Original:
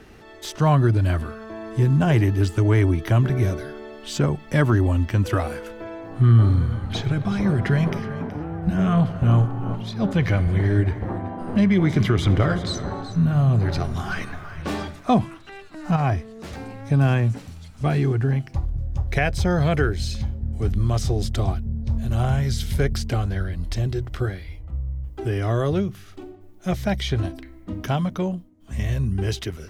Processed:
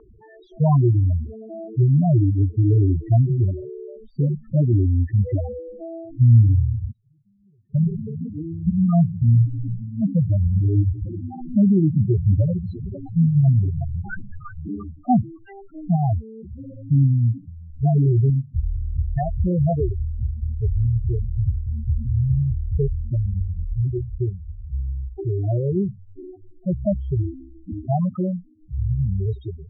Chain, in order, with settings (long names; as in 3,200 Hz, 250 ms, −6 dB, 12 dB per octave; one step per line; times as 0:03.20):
0:06.88–0:07.75: gate with flip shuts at −22 dBFS, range −39 dB
spectral peaks only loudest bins 4
0:17.70–0:18.30: low-shelf EQ 76 Hz +10.5 dB
auto-filter low-pass sine 0.21 Hz 780–1,700 Hz
level +2 dB